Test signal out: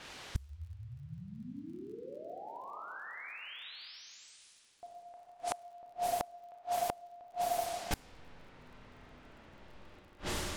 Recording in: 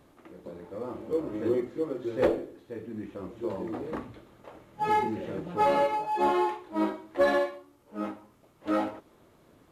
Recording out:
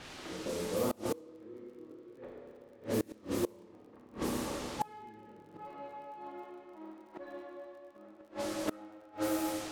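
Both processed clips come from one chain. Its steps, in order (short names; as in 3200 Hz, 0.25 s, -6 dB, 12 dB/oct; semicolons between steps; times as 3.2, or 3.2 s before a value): Schroeder reverb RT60 2.6 s, combs from 25 ms, DRR -2.5 dB; added noise white -45 dBFS; flipped gate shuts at -22 dBFS, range -28 dB; low-pass opened by the level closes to 2200 Hz, open at -31.5 dBFS; crackle 45/s -57 dBFS; gain +2.5 dB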